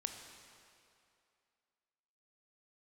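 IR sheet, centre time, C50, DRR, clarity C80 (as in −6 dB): 50 ms, 5.5 dB, 4.5 dB, 6.5 dB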